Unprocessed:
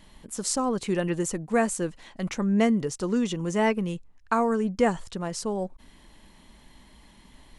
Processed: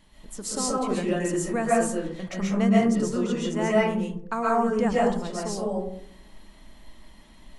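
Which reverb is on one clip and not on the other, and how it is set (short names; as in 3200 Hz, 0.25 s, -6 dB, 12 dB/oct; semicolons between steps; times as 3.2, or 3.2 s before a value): digital reverb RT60 0.65 s, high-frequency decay 0.35×, pre-delay 95 ms, DRR -6 dB; gain -5.5 dB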